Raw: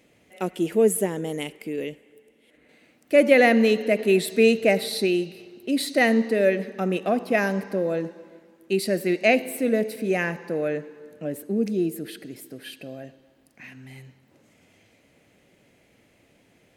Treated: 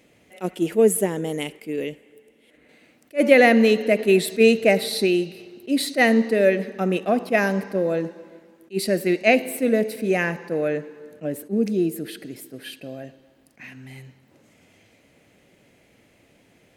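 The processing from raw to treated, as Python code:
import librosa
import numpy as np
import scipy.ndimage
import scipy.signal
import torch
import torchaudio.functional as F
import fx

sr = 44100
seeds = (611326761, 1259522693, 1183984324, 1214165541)

y = fx.attack_slew(x, sr, db_per_s=420.0)
y = F.gain(torch.from_numpy(y), 2.5).numpy()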